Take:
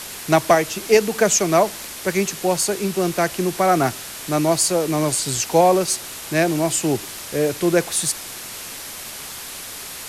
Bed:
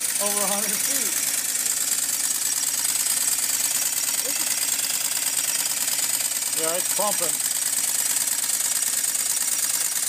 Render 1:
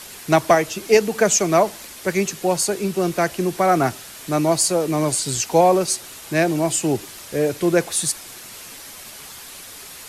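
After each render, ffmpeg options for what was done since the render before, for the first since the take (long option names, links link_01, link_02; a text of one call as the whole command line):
ffmpeg -i in.wav -af "afftdn=noise_reduction=6:noise_floor=-34" out.wav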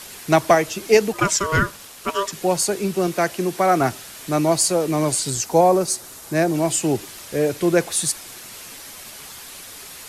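ffmpeg -i in.wav -filter_complex "[0:a]asplit=3[link_01][link_02][link_03];[link_01]afade=type=out:start_time=1.12:duration=0.02[link_04];[link_02]aeval=exprs='val(0)*sin(2*PI*790*n/s)':channel_layout=same,afade=type=in:start_time=1.12:duration=0.02,afade=type=out:start_time=2.31:duration=0.02[link_05];[link_03]afade=type=in:start_time=2.31:duration=0.02[link_06];[link_04][link_05][link_06]amix=inputs=3:normalize=0,asettb=1/sr,asplit=3[link_07][link_08][link_09];[link_07]atrim=end=3.074[link_10];[link_08]atrim=start=3.07:end=3.81,asetpts=PTS-STARTPTS,afade=type=in:duration=0.004:curve=qsin,afade=type=out:start_time=0.736:duration=0.004:curve=qsin,highpass=frequency=150:poles=1[link_11];[link_09]atrim=start=3.806[link_12];[link_10][link_11]acrossfade=duration=0.004:curve1=hsin:curve2=qsin[link_13];[link_13][link_12]acrossfade=duration=0.004:curve1=qsin:curve2=hsin,asettb=1/sr,asplit=3[link_14][link_15][link_16];[link_14]atrim=end=5.304[link_17];[link_15]atrim=start=5.3:end=6.54,asetpts=PTS-STARTPTS,afade=type=in:duration=0.004:curve=qsin,afade=type=out:start_time=1.236:duration=0.004:curve=qsin,equalizer=frequency=2800:width=1.1:gain=-7[link_18];[link_16]atrim=start=6.536[link_19];[link_17][link_18]acrossfade=duration=0.004:curve1=hsin:curve2=qsin[link_20];[link_20][link_19]acrossfade=duration=0.004:curve1=qsin:curve2=hsin" out.wav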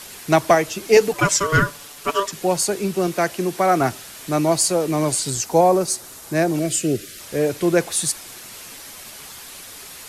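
ffmpeg -i in.wav -filter_complex "[0:a]asettb=1/sr,asplit=3[link_01][link_02][link_03];[link_01]atrim=end=0.964[link_04];[link_02]atrim=start=0.96:end=2.2,asetpts=PTS-STARTPTS,afade=type=in:duration=0.004:curve=qsin,afade=type=out:start_time=1.236:duration=0.004:curve=qsin,aecho=1:1:6.9:0.66,atrim=end_sample=54684[link_05];[link_03]atrim=start=2.196[link_06];[link_04][link_05]acrossfade=duration=0.004:curve1=hsin:curve2=qsin[link_07];[link_07][link_06]acrossfade=duration=0.004:curve1=qsin:curve2=hsin,asettb=1/sr,asplit=3[link_08][link_09][link_10];[link_08]atrim=end=6.594[link_11];[link_09]atrim=start=6.59:end=7.2,asetpts=PTS-STARTPTS,afade=type=in:duration=0.004:curve=qsin,afade=type=out:start_time=0.606:duration=0.004:curve=qsin,asuperstop=centerf=900:order=4:qfactor=1.2[link_12];[link_10]atrim=start=7.196[link_13];[link_11][link_12]acrossfade=duration=0.004:curve1=hsin:curve2=qsin[link_14];[link_14][link_13]acrossfade=duration=0.004:curve1=qsin:curve2=hsin" out.wav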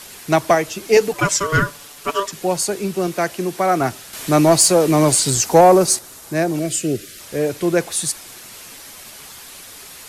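ffmpeg -i in.wav -filter_complex "[0:a]asettb=1/sr,asplit=3[link_01][link_02][link_03];[link_01]atrim=end=4.134[link_04];[link_02]atrim=start=4.13:end=5.99,asetpts=PTS-STARTPTS,afade=type=in:duration=0.004:curve=qsin,afade=type=out:start_time=1.856:duration=0.004:curve=qsin,acontrast=71[link_05];[link_03]atrim=start=5.986[link_06];[link_04][link_05]acrossfade=duration=0.004:curve1=hsin:curve2=qsin[link_07];[link_07][link_06]acrossfade=duration=0.004:curve1=qsin:curve2=hsin" out.wav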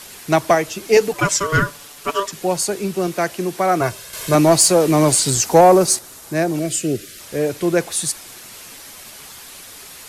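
ffmpeg -i in.wav -filter_complex "[0:a]asettb=1/sr,asplit=3[link_01][link_02][link_03];[link_01]atrim=end=3.814[link_04];[link_02]atrim=start=3.81:end=4.35,asetpts=PTS-STARTPTS,afade=type=in:duration=0.004:curve=qsin,afade=type=out:start_time=0.536:duration=0.004:curve=qsin,aecho=1:1:1.9:0.65,atrim=end_sample=23814[link_05];[link_03]atrim=start=4.346[link_06];[link_04][link_05]acrossfade=duration=0.004:curve1=hsin:curve2=qsin[link_07];[link_07][link_06]acrossfade=duration=0.004:curve1=qsin:curve2=hsin,asettb=1/sr,asplit=3[link_08][link_09][link_10];[link_08]atrim=end=5.554[link_11];[link_09]atrim=start=5.55:end=5.97,asetpts=PTS-STARTPTS,afade=type=in:duration=0.004:curve=qsin,afade=type=out:start_time=0.416:duration=0.004:curve=qsin,acrusher=bits=9:dc=4:mix=0:aa=0.000001[link_12];[link_10]atrim=start=5.966[link_13];[link_11][link_12]acrossfade=duration=0.004:curve1=hsin:curve2=qsin[link_14];[link_14][link_13]acrossfade=duration=0.004:curve1=qsin:curve2=hsin" out.wav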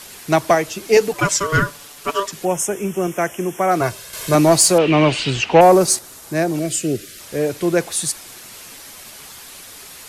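ffmpeg -i in.wav -filter_complex "[0:a]asettb=1/sr,asplit=3[link_01][link_02][link_03];[link_01]atrim=end=2.454[link_04];[link_02]atrim=start=2.45:end=3.71,asetpts=PTS-STARTPTS,afade=type=in:duration=0.004:curve=qsin,afade=type=out:start_time=1.256:duration=0.004:curve=qsin,asuperstop=centerf=4300:order=8:qfactor=2.2[link_05];[link_03]atrim=start=3.706[link_06];[link_04][link_05]acrossfade=duration=0.004:curve1=hsin:curve2=qsin[link_07];[link_07][link_06]acrossfade=duration=0.004:curve1=qsin:curve2=hsin,asettb=1/sr,asplit=3[link_08][link_09][link_10];[link_08]atrim=end=4.784[link_11];[link_09]atrim=start=4.78:end=5.61,asetpts=PTS-STARTPTS,afade=type=in:duration=0.004:curve=qsin,afade=type=out:start_time=0.826:duration=0.004:curve=qsin,lowpass=frequency=2800:width_type=q:width=5.7[link_12];[link_10]atrim=start=5.606[link_13];[link_11][link_12]acrossfade=duration=0.004:curve1=hsin:curve2=qsin[link_14];[link_14][link_13]acrossfade=duration=0.004:curve1=qsin:curve2=hsin" out.wav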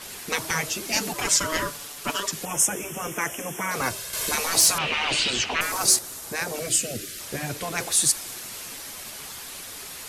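ffmpeg -i in.wav -af "afftfilt=real='re*lt(hypot(re,im),0.355)':imag='im*lt(hypot(re,im),0.355)':win_size=1024:overlap=0.75,adynamicequalizer=threshold=0.02:dfrequency=4200:dqfactor=0.7:tfrequency=4200:tqfactor=0.7:attack=5:release=100:ratio=0.375:range=1.5:mode=boostabove:tftype=highshelf" out.wav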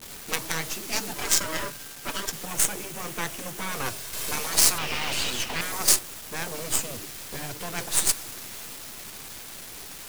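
ffmpeg -i in.wav -filter_complex "[0:a]acrossover=split=370[link_01][link_02];[link_01]asoftclip=type=tanh:threshold=-39dB[link_03];[link_02]acrusher=bits=3:dc=4:mix=0:aa=0.000001[link_04];[link_03][link_04]amix=inputs=2:normalize=0" out.wav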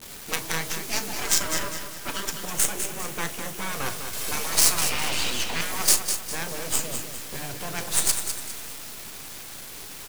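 ffmpeg -i in.wav -filter_complex "[0:a]asplit=2[link_01][link_02];[link_02]adelay=36,volume=-13.5dB[link_03];[link_01][link_03]amix=inputs=2:normalize=0,asplit=2[link_04][link_05];[link_05]aecho=0:1:202|404|606|808:0.398|0.155|0.0606|0.0236[link_06];[link_04][link_06]amix=inputs=2:normalize=0" out.wav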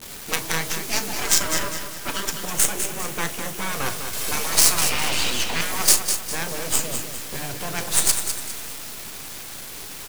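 ffmpeg -i in.wav -af "volume=3.5dB,alimiter=limit=-1dB:level=0:latency=1" out.wav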